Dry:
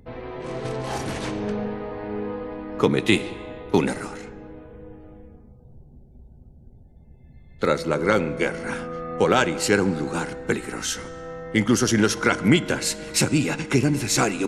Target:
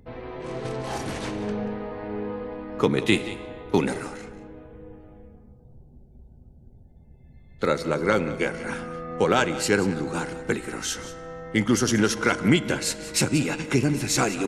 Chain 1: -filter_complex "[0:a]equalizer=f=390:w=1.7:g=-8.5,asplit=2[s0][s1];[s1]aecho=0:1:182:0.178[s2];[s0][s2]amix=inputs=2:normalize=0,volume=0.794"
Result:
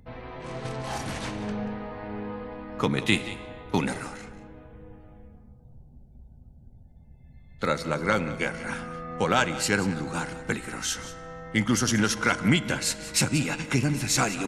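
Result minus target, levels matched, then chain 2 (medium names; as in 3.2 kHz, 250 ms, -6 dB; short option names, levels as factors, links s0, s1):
500 Hz band -3.5 dB
-filter_complex "[0:a]asplit=2[s0][s1];[s1]aecho=0:1:182:0.178[s2];[s0][s2]amix=inputs=2:normalize=0,volume=0.794"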